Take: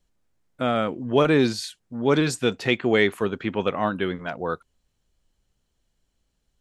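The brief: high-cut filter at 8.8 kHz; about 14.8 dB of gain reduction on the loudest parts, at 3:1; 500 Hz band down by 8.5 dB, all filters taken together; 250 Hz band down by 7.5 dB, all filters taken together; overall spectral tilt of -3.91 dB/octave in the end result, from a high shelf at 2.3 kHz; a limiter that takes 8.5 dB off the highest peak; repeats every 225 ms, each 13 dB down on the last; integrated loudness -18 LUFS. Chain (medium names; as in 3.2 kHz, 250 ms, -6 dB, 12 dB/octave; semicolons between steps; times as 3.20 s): low-pass 8.8 kHz; peaking EQ 250 Hz -7 dB; peaking EQ 500 Hz -8.5 dB; treble shelf 2.3 kHz +3.5 dB; compression 3:1, threshold -38 dBFS; peak limiter -27.5 dBFS; feedback delay 225 ms, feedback 22%, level -13 dB; trim +22.5 dB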